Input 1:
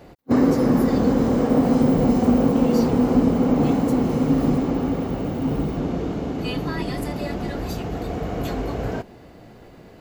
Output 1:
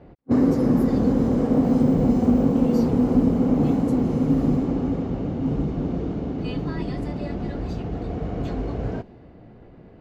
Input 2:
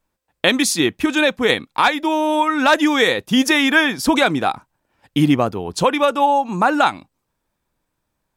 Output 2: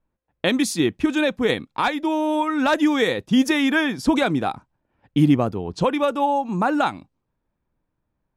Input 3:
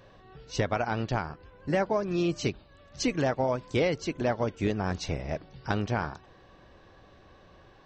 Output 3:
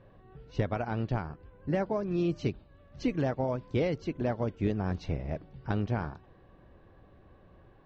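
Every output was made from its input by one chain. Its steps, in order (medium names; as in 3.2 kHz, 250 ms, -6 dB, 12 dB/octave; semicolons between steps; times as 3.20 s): level-controlled noise filter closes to 2.6 kHz, open at -15 dBFS; bass shelf 500 Hz +9 dB; trim -8 dB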